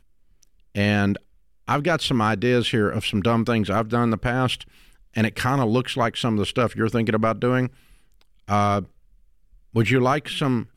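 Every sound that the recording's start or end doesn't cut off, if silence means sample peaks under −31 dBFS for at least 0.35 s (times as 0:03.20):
0:00.75–0:01.17
0:01.68–0:04.62
0:05.16–0:07.67
0:08.49–0:08.84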